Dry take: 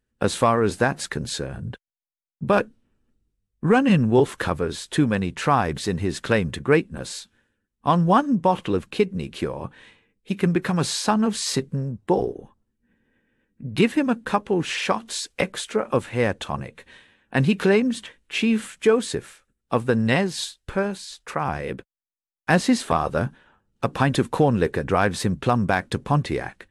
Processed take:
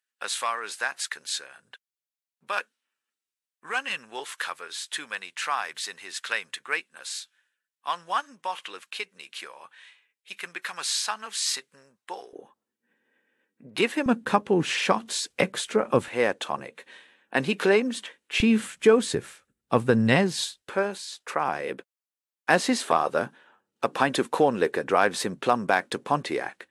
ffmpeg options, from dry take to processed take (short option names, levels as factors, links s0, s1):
-af "asetnsamples=n=441:p=0,asendcmd='12.33 highpass f 440;14.06 highpass f 120;16.08 highpass f 340;18.4 highpass f 92;20.62 highpass f 340',highpass=1500"